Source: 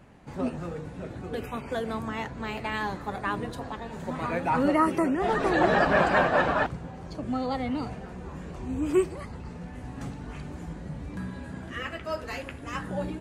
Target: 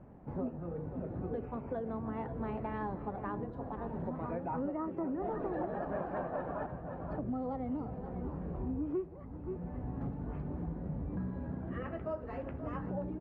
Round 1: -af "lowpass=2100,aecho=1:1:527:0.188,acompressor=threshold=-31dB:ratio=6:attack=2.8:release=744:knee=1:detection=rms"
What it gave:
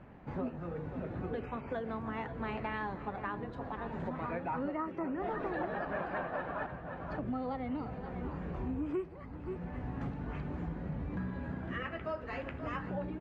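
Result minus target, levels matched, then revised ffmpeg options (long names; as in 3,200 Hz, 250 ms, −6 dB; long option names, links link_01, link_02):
2,000 Hz band +9.0 dB
-af "lowpass=830,aecho=1:1:527:0.188,acompressor=threshold=-31dB:ratio=6:attack=2.8:release=744:knee=1:detection=rms"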